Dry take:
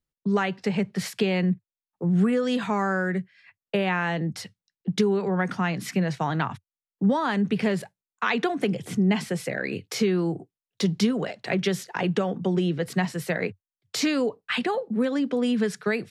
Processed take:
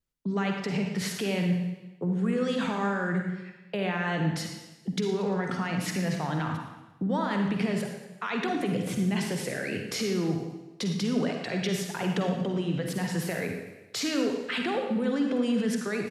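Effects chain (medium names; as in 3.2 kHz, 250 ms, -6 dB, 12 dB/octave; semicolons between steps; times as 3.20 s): peak limiter -22.5 dBFS, peak gain reduction 11.5 dB; feedback delay 115 ms, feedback 52%, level -15.5 dB; vibrato 2.5 Hz 53 cents; on a send at -3 dB: reverberation RT60 0.95 s, pre-delay 43 ms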